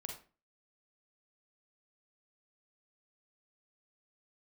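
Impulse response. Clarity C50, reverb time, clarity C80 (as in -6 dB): 5.0 dB, 0.35 s, 11.5 dB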